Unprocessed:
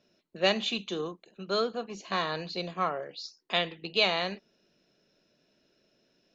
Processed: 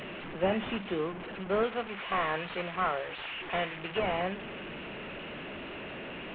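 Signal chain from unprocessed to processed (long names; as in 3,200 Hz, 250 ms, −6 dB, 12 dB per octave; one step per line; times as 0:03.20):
linear delta modulator 16 kbit/s, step −36 dBFS
0:01.63–0:03.99: tilt shelving filter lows −4.5 dB, about 670 Hz
level +1.5 dB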